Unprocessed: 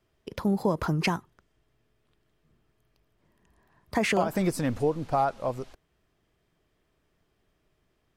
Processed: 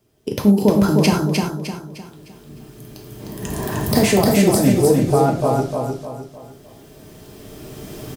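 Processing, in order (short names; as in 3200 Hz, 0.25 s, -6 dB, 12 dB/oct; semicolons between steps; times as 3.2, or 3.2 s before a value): recorder AGC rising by 12 dB/s; HPF 170 Hz 6 dB/oct; bell 1700 Hz -14.5 dB 2.9 oct; in parallel at -1 dB: level quantiser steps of 23 dB; on the sum: soft clip -3.5 dBFS, distortion -31 dB; on a send: feedback echo 0.305 s, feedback 39%, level -3.5 dB; on the sum: non-linear reverb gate 0.14 s falling, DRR 1.5 dB; maximiser +13.5 dB; gain -1 dB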